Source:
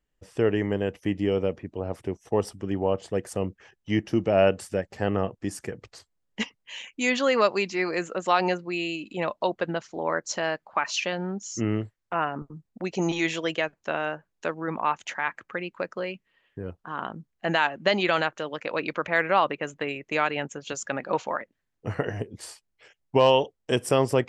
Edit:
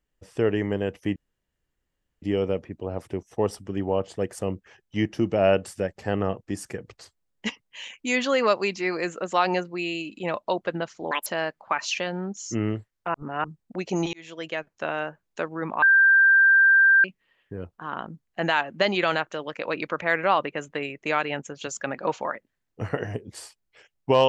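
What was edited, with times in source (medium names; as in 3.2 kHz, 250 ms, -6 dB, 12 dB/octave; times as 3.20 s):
1.16 s: insert room tone 1.06 s
10.05–10.32 s: speed 178%
12.20–12.50 s: reverse
13.19–14.14 s: fade in equal-power
14.88–16.10 s: bleep 1.58 kHz -13 dBFS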